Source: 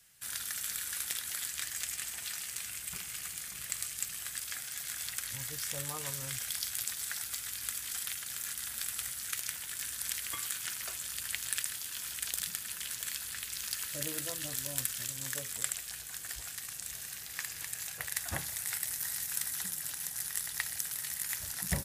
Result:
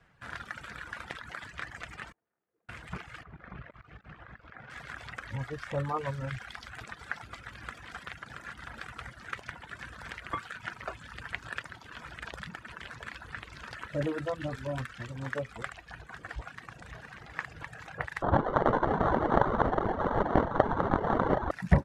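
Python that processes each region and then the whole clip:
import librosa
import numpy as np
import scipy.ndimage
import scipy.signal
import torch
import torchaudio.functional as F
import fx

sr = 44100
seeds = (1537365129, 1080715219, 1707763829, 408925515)

y = fx.chain(x, sr, fx.lowpass_res(hz=380.0, q=1.6),
    fx.differentiator(), at=(2.12, 2.69))
y = fx.chain(y, sr, fx.over_compress(threshold_db=-43.0, ratio=-1.0),
    fx.spacing_loss(db_at_10k=32), at=(3.23, 4.7))
y = fx.chain(y, sr, fx.sample_hold(seeds[0], rate_hz=2500.0, jitter_pct=0),
    fx.echo_single(ms=772, db=-10.0), at=(18.22, 21.51))
y = fx.dereverb_blind(y, sr, rt60_s=0.98)
y = scipy.signal.sosfilt(scipy.signal.cheby1(2, 1.0, 1100.0, 'lowpass', fs=sr, output='sos'), y)
y = F.gain(torch.from_numpy(y), 13.5).numpy()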